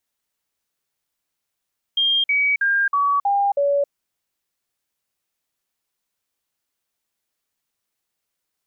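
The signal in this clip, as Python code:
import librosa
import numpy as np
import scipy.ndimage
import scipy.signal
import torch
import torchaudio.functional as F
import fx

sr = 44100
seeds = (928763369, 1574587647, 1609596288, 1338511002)

y = fx.stepped_sweep(sr, from_hz=3210.0, direction='down', per_octave=2, tones=6, dwell_s=0.27, gap_s=0.05, level_db=-15.5)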